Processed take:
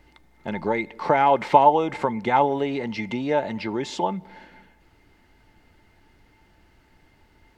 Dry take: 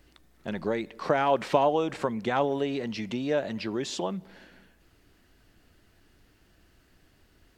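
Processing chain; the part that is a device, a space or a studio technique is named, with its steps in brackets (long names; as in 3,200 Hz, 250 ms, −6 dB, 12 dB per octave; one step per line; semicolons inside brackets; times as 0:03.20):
inside a helmet (high-shelf EQ 4,900 Hz −8 dB; hollow resonant body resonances 880/2,100 Hz, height 18 dB, ringing for 90 ms)
level +3.5 dB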